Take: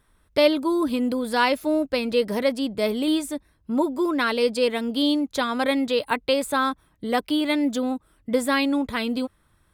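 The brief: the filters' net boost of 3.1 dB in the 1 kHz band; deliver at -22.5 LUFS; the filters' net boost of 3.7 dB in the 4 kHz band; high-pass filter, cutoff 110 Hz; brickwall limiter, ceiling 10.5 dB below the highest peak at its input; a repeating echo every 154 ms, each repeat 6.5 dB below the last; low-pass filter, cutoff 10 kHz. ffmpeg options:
-af "highpass=110,lowpass=10000,equalizer=f=1000:t=o:g=3.5,equalizer=f=4000:t=o:g=4.5,alimiter=limit=0.188:level=0:latency=1,aecho=1:1:154|308|462|616|770|924:0.473|0.222|0.105|0.0491|0.0231|0.0109,volume=1.19"

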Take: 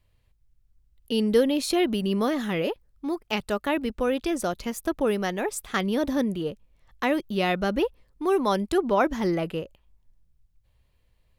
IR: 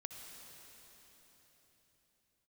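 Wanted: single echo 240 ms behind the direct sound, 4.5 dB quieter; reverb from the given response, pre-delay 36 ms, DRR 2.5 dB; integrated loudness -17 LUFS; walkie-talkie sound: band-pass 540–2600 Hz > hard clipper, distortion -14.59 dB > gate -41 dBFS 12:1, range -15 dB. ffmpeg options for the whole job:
-filter_complex "[0:a]aecho=1:1:240:0.596,asplit=2[s0][s1];[1:a]atrim=start_sample=2205,adelay=36[s2];[s1][s2]afir=irnorm=-1:irlink=0,volume=1.12[s3];[s0][s3]amix=inputs=2:normalize=0,highpass=540,lowpass=2600,asoftclip=type=hard:threshold=0.1,agate=range=0.178:threshold=0.00891:ratio=12,volume=3.98"

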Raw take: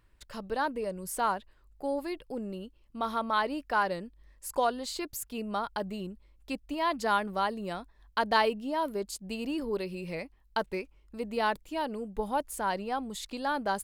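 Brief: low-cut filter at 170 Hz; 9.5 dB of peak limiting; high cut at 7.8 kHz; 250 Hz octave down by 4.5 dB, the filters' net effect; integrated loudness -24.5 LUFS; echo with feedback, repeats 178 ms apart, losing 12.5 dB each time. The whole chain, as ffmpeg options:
-af "highpass=170,lowpass=7800,equalizer=f=250:t=o:g=-4.5,alimiter=limit=0.0944:level=0:latency=1,aecho=1:1:178|356|534:0.237|0.0569|0.0137,volume=3.35"

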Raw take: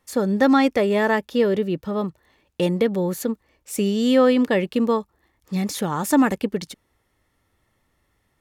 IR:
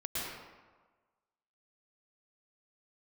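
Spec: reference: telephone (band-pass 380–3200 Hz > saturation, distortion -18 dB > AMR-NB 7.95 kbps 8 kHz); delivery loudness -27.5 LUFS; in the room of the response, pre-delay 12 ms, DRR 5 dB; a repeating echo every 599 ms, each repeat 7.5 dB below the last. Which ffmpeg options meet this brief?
-filter_complex "[0:a]aecho=1:1:599|1198|1797|2396|2995:0.422|0.177|0.0744|0.0312|0.0131,asplit=2[s0][s1];[1:a]atrim=start_sample=2205,adelay=12[s2];[s1][s2]afir=irnorm=-1:irlink=0,volume=0.335[s3];[s0][s3]amix=inputs=2:normalize=0,highpass=380,lowpass=3200,asoftclip=threshold=0.266,volume=0.75" -ar 8000 -c:a libopencore_amrnb -b:a 7950

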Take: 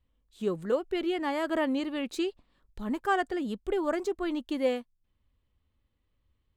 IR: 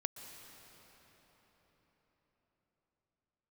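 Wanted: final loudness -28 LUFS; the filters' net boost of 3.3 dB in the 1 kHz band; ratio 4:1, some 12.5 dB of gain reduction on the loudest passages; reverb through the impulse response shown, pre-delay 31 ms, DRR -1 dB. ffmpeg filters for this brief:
-filter_complex "[0:a]equalizer=f=1000:t=o:g=4.5,acompressor=threshold=0.0158:ratio=4,asplit=2[s0][s1];[1:a]atrim=start_sample=2205,adelay=31[s2];[s1][s2]afir=irnorm=-1:irlink=0,volume=1.19[s3];[s0][s3]amix=inputs=2:normalize=0,volume=2.51"

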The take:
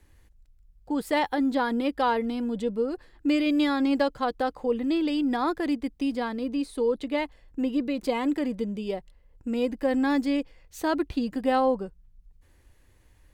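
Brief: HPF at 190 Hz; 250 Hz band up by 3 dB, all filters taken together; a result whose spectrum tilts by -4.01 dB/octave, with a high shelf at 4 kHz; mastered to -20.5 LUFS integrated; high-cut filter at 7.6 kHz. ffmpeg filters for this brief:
-af "highpass=190,lowpass=7600,equalizer=f=250:t=o:g=4.5,highshelf=f=4000:g=-5.5,volume=1.68"

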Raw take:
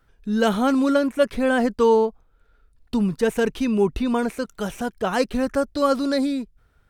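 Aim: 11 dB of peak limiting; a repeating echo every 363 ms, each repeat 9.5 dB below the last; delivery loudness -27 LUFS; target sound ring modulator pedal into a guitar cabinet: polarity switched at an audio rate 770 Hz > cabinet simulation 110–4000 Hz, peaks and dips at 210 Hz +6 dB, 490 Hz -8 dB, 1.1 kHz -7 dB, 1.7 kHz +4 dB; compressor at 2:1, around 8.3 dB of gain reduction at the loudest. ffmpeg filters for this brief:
-af "acompressor=threshold=0.0398:ratio=2,alimiter=level_in=1.12:limit=0.0631:level=0:latency=1,volume=0.891,aecho=1:1:363|726|1089|1452:0.335|0.111|0.0365|0.012,aeval=exprs='val(0)*sgn(sin(2*PI*770*n/s))':c=same,highpass=110,equalizer=f=210:t=q:w=4:g=6,equalizer=f=490:t=q:w=4:g=-8,equalizer=f=1100:t=q:w=4:g=-7,equalizer=f=1700:t=q:w=4:g=4,lowpass=f=4000:w=0.5412,lowpass=f=4000:w=1.3066,volume=2.37"

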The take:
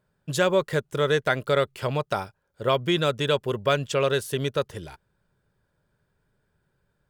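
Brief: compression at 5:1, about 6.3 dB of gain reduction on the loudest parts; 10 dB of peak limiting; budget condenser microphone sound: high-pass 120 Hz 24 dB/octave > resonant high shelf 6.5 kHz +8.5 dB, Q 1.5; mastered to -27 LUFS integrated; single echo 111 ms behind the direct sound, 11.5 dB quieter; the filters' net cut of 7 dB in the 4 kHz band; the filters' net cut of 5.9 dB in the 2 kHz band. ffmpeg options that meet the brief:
-af "equalizer=f=2000:t=o:g=-7,equalizer=f=4000:t=o:g=-4,acompressor=threshold=0.0562:ratio=5,alimiter=level_in=1.12:limit=0.0631:level=0:latency=1,volume=0.891,highpass=f=120:w=0.5412,highpass=f=120:w=1.3066,highshelf=f=6500:t=q:w=1.5:g=8.5,aecho=1:1:111:0.266,volume=2.37"

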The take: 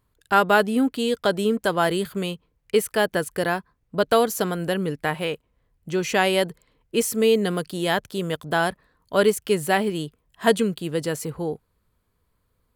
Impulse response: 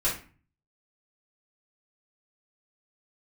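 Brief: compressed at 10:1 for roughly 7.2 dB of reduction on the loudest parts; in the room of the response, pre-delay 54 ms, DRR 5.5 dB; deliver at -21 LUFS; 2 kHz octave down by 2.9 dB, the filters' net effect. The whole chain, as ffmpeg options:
-filter_complex "[0:a]equalizer=f=2000:t=o:g=-4,acompressor=threshold=0.1:ratio=10,asplit=2[s0][s1];[1:a]atrim=start_sample=2205,adelay=54[s2];[s1][s2]afir=irnorm=-1:irlink=0,volume=0.178[s3];[s0][s3]amix=inputs=2:normalize=0,volume=1.88"

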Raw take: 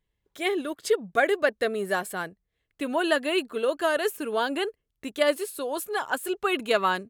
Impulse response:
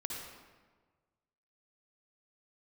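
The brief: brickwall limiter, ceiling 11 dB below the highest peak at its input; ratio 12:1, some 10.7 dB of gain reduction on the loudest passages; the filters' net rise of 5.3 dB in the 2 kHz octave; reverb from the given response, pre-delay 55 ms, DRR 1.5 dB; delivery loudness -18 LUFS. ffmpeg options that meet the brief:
-filter_complex "[0:a]equalizer=f=2000:t=o:g=7,acompressor=threshold=0.0501:ratio=12,alimiter=level_in=1.33:limit=0.0631:level=0:latency=1,volume=0.75,asplit=2[s0][s1];[1:a]atrim=start_sample=2205,adelay=55[s2];[s1][s2]afir=irnorm=-1:irlink=0,volume=0.75[s3];[s0][s3]amix=inputs=2:normalize=0,volume=5.96"

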